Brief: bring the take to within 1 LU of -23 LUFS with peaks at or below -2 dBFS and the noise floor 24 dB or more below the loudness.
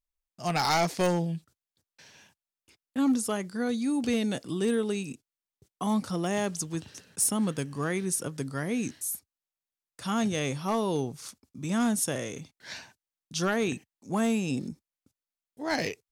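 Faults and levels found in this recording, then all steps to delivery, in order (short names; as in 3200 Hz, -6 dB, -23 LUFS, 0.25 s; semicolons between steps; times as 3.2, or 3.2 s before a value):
clipped 0.3%; flat tops at -19.0 dBFS; loudness -29.5 LUFS; peak -19.0 dBFS; loudness target -23.0 LUFS
-> clip repair -19 dBFS; gain +6.5 dB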